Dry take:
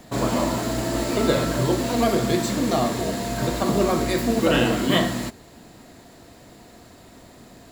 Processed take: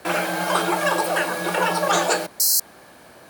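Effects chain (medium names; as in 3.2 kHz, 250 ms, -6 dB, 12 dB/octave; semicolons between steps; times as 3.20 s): painted sound noise, 5.61–6.08 s, 1.7–7.1 kHz -18 dBFS; frequency shift +19 Hz; speed mistake 33 rpm record played at 78 rpm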